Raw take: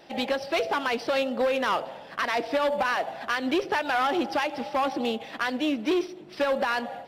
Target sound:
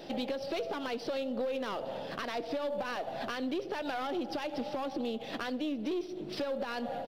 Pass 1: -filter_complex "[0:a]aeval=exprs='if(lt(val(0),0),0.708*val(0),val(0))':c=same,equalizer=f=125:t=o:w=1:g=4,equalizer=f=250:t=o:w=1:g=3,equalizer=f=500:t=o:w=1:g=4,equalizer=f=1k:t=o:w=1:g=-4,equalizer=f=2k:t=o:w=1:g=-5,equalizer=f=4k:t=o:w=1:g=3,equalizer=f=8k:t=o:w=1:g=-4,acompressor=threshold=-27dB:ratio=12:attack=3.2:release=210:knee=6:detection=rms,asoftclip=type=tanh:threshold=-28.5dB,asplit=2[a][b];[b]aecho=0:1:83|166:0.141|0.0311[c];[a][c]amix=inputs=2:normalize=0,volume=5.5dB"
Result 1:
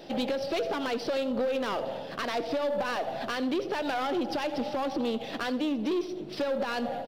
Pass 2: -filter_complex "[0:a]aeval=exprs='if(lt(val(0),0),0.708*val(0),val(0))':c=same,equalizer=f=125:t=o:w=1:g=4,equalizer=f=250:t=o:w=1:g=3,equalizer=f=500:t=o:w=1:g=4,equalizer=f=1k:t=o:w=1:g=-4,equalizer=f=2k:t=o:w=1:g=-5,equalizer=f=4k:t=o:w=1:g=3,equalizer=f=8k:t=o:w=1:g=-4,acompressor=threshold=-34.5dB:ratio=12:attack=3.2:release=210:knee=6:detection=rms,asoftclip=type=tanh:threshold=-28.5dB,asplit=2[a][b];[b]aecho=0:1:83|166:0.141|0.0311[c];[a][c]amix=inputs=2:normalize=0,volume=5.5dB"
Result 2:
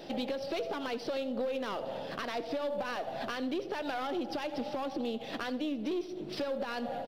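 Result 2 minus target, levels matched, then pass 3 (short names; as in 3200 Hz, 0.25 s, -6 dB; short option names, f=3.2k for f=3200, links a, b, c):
echo-to-direct +8 dB
-filter_complex "[0:a]aeval=exprs='if(lt(val(0),0),0.708*val(0),val(0))':c=same,equalizer=f=125:t=o:w=1:g=4,equalizer=f=250:t=o:w=1:g=3,equalizer=f=500:t=o:w=1:g=4,equalizer=f=1k:t=o:w=1:g=-4,equalizer=f=2k:t=o:w=1:g=-5,equalizer=f=4k:t=o:w=1:g=3,equalizer=f=8k:t=o:w=1:g=-4,acompressor=threshold=-34.5dB:ratio=12:attack=3.2:release=210:knee=6:detection=rms,asoftclip=type=tanh:threshold=-28.5dB,asplit=2[a][b];[b]aecho=0:1:83|166:0.0562|0.0124[c];[a][c]amix=inputs=2:normalize=0,volume=5.5dB"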